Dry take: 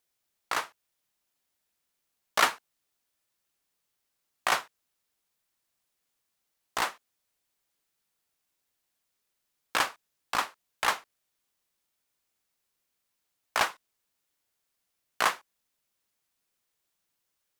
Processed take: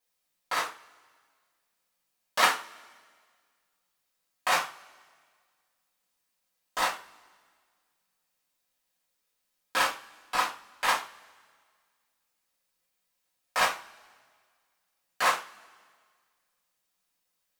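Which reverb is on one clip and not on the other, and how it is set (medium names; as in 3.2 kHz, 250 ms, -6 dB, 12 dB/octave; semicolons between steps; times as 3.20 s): two-slope reverb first 0.29 s, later 1.8 s, from -26 dB, DRR -7.5 dB; trim -6.5 dB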